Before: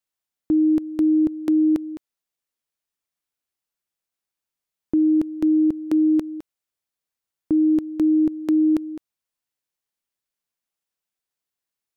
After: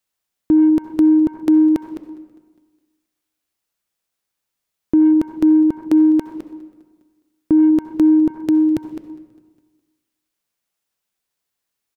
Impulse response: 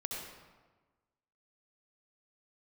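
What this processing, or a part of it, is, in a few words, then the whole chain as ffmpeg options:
saturated reverb return: -filter_complex "[0:a]asettb=1/sr,asplit=3[a][b][c];[a]atrim=end=8.304[d];[b]atrim=start=8.3:end=8.85,asetpts=PTS-STARTPTS,afade=t=in:d=0.004:c=qsin,afade=t=out:st=0.546:d=0.004:c=qsin,equalizer=f=125:t=o:w=1:g=9,equalizer=f=250:t=o:w=1:g=-4,equalizer=f=1k:t=o:w=1:g=-9[e];[c]atrim=start=8.846[f];[d][e]acrossfade=d=0.004:c1=hsin:c2=qsin[g];[g][f]acrossfade=d=0.004:c1=qsin:c2=hsin,asplit=2[h][i];[1:a]atrim=start_sample=2205[j];[i][j]afir=irnorm=-1:irlink=0,asoftclip=type=tanh:threshold=-23.5dB,volume=-7dB[k];[h][k]amix=inputs=2:normalize=0,aecho=1:1:204|408|612|816:0.0708|0.0382|0.0206|0.0111,volume=4.5dB"

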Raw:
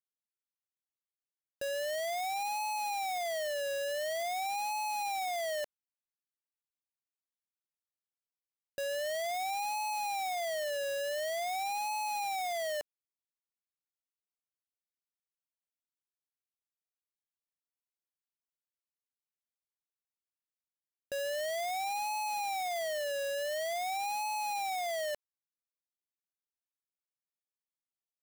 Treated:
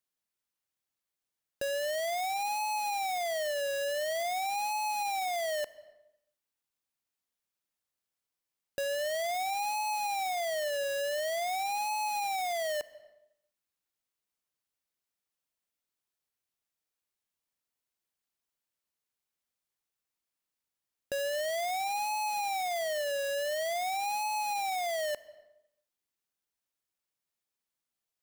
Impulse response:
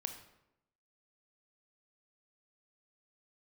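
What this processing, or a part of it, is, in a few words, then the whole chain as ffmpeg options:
compressed reverb return: -filter_complex "[0:a]asplit=2[a][b];[1:a]atrim=start_sample=2205[c];[b][c]afir=irnorm=-1:irlink=0,acompressor=threshold=-46dB:ratio=6,volume=2.5dB[d];[a][d]amix=inputs=2:normalize=0"

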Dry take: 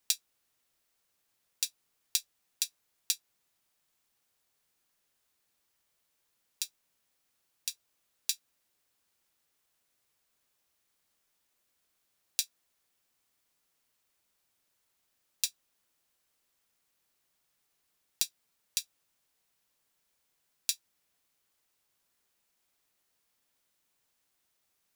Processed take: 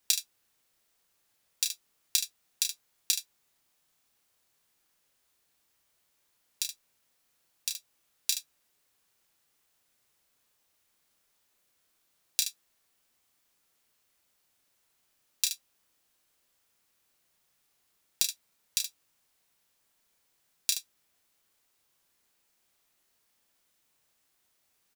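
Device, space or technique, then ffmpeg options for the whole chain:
slapback doubling: -filter_complex "[0:a]asplit=3[a][b][c];[b]adelay=31,volume=-6dB[d];[c]adelay=74,volume=-9.5dB[e];[a][d][e]amix=inputs=3:normalize=0,volume=2.5dB"

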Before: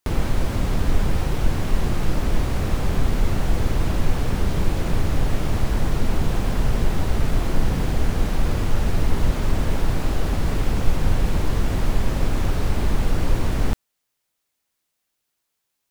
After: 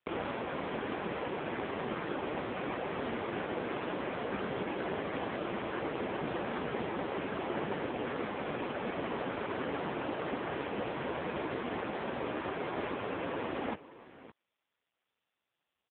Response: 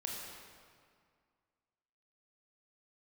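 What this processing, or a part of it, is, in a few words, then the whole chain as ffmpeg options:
satellite phone: -af "highpass=330,lowpass=3.1k,aecho=1:1:564:0.141" -ar 8000 -c:a libopencore_amrnb -b:a 5150

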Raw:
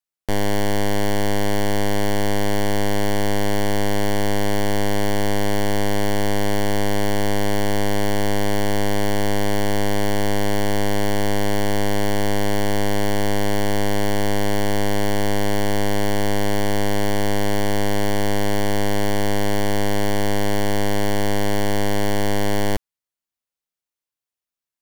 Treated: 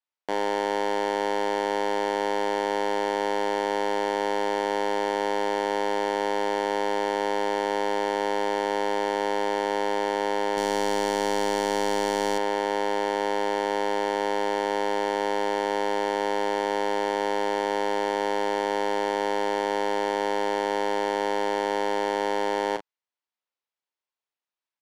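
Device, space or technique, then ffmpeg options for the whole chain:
intercom: -filter_complex "[0:a]highpass=360,lowpass=4.2k,equalizer=f=920:t=o:w=0.3:g=5,asoftclip=type=tanh:threshold=-13dB,asplit=2[a][b];[b]adelay=37,volume=-9dB[c];[a][c]amix=inputs=2:normalize=0,asettb=1/sr,asplit=3[d][e][f];[d]atrim=end=10.574[g];[e]atrim=start=10.57:end=12.38,asetpts=PTS-STARTPTS,afade=t=in:d=0.004:c=qsin,afade=t=out:st=1.806:d=0.004:c=qsin,bass=f=250:g=8,treble=f=4k:g=10[h];[f]atrim=start=12.376[i];[g][h]acrossfade=d=0.004:c1=hsin:c2=qsin[j];[j][i]acrossfade=d=0.004:c1=qsin:c2=hsin"

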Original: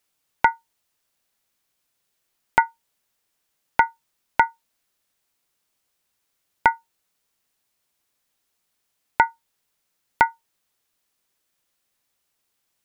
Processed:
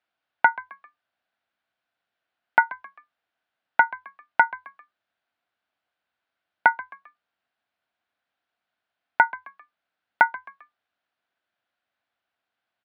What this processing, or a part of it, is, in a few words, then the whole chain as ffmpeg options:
frequency-shifting delay pedal into a guitar cabinet: -filter_complex "[0:a]asplit=4[a][b][c][d];[b]adelay=132,afreqshift=94,volume=-18.5dB[e];[c]adelay=264,afreqshift=188,volume=-25.8dB[f];[d]adelay=396,afreqshift=282,volume=-33.2dB[g];[a][e][f][g]amix=inputs=4:normalize=0,highpass=97,equalizer=f=150:t=q:w=4:g=-7,equalizer=f=410:t=q:w=4:g=-5,equalizer=f=700:t=q:w=4:g=9,equalizer=f=1.5k:t=q:w=4:g=9,lowpass=f=3.7k:w=0.5412,lowpass=f=3.7k:w=1.3066,volume=-4.5dB"

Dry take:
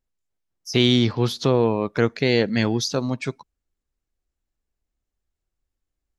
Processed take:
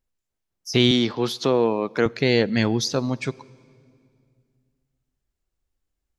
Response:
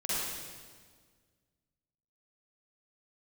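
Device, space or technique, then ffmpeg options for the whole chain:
ducked reverb: -filter_complex "[0:a]asplit=3[a][b][c];[1:a]atrim=start_sample=2205[d];[b][d]afir=irnorm=-1:irlink=0[e];[c]apad=whole_len=272596[f];[e][f]sidechaincompress=threshold=-37dB:ratio=3:attack=27:release=1020,volume=-15.5dB[g];[a][g]amix=inputs=2:normalize=0,asettb=1/sr,asplit=3[h][i][j];[h]atrim=end=0.914[k];[i]atrim=start=0.91:end=2.06,asetpts=PTS-STARTPTS,afade=t=in:d=0.004:c=qsin,afade=t=out:st=1.146:d=0.004:c=qsin,highpass=210[l];[j]atrim=start=2.056[m];[k][l]acrossfade=d=0.004:c1=hsin:c2=qsin[n];[n][m]acrossfade=d=0.004:c1=qsin:c2=hsin"

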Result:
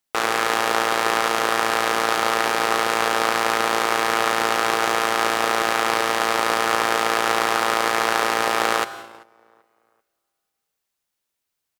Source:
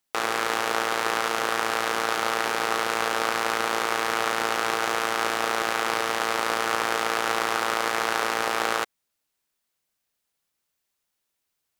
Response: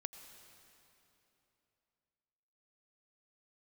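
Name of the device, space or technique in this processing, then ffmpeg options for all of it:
keyed gated reverb: -filter_complex "[0:a]asplit=2[a][b];[b]adelay=388,lowpass=f=2k:p=1,volume=-21dB,asplit=2[c][d];[d]adelay=388,lowpass=f=2k:p=1,volume=0.41,asplit=2[e][f];[f]adelay=388,lowpass=f=2k:p=1,volume=0.41[g];[a][c][e][g]amix=inputs=4:normalize=0,asplit=3[h][i][j];[1:a]atrim=start_sample=2205[k];[i][k]afir=irnorm=-1:irlink=0[l];[j]apad=whole_len=571391[m];[l][m]sidechaingate=range=-22dB:threshold=-44dB:ratio=16:detection=peak,volume=3.5dB[n];[h][n]amix=inputs=2:normalize=0,volume=-1.5dB"

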